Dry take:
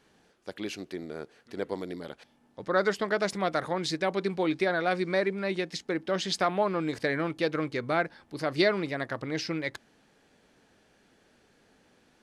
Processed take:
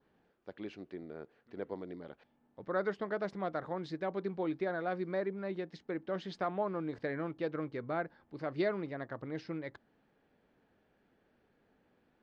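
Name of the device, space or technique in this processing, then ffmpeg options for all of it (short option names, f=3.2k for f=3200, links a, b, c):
phone in a pocket: -af "lowpass=3.5k,highshelf=f=2.2k:g=-9,adynamicequalizer=threshold=0.00224:dfrequency=2400:dqfactor=2.4:tfrequency=2400:tqfactor=2.4:attack=5:release=100:ratio=0.375:range=3:mode=cutabove:tftype=bell,volume=-7dB"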